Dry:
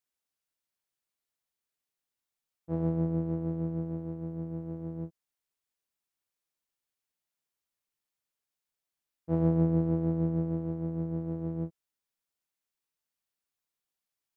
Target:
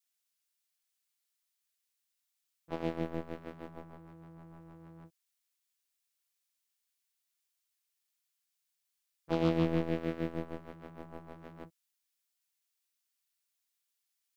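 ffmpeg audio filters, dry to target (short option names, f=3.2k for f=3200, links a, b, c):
-af "tiltshelf=f=1.1k:g=-9.5,aeval=exprs='0.0708*(cos(1*acos(clip(val(0)/0.0708,-1,1)))-cos(1*PI/2))+0.0141*(cos(7*acos(clip(val(0)/0.0708,-1,1)))-cos(7*PI/2))':c=same,adynamicequalizer=threshold=0.00158:dfrequency=800:dqfactor=2.3:tfrequency=800:tqfactor=2.3:attack=5:release=100:ratio=0.375:range=2.5:mode=cutabove:tftype=bell,volume=5dB"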